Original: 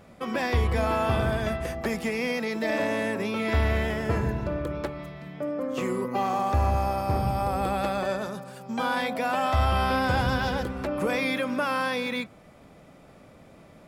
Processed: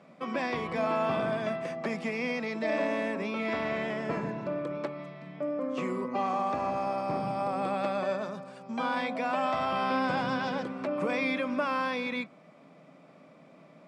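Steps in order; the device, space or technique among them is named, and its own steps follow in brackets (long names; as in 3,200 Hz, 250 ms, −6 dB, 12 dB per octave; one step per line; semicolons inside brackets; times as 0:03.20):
television speaker (loudspeaker in its box 160–7,900 Hz, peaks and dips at 160 Hz +7 dB, 270 Hz +5 dB, 620 Hz +6 dB, 1,100 Hz +6 dB, 2,300 Hz +5 dB, 6,800 Hz −4 dB)
level −6.5 dB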